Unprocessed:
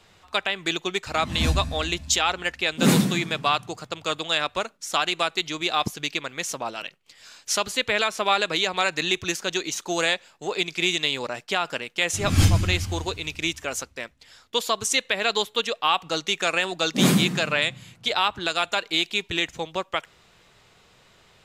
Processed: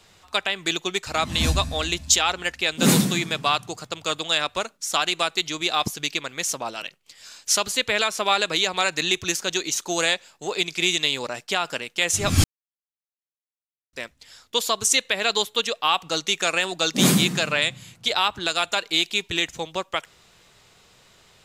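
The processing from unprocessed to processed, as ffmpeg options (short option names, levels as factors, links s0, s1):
-filter_complex "[0:a]asplit=3[s0][s1][s2];[s0]atrim=end=12.44,asetpts=PTS-STARTPTS,afade=t=out:st=12.436:d=0.004:c=hsin[s3];[s1]atrim=start=12.44:end=13.93,asetpts=PTS-STARTPTS,volume=0[s4];[s2]atrim=start=13.93,asetpts=PTS-STARTPTS,afade=t=in:d=0.004:c=hsin[s5];[s3][s4][s5]concat=n=3:v=0:a=1,bass=f=250:g=0,treble=f=4000:g=6"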